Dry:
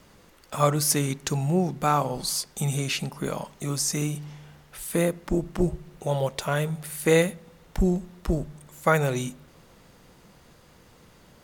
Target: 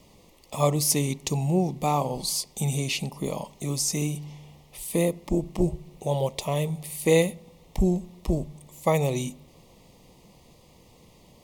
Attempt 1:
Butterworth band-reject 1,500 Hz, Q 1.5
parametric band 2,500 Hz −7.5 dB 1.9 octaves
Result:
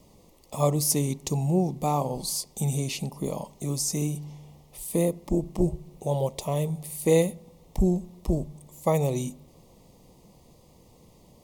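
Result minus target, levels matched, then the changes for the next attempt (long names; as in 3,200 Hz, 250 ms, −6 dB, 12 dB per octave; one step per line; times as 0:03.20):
2,000 Hz band −6.5 dB
remove: parametric band 2,500 Hz −7.5 dB 1.9 octaves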